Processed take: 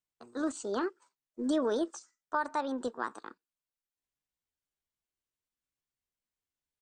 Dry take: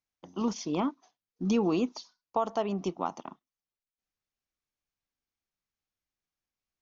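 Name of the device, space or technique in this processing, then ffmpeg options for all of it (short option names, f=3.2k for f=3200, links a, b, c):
chipmunk voice: -af "asetrate=58866,aresample=44100,atempo=0.749154,volume=-3dB"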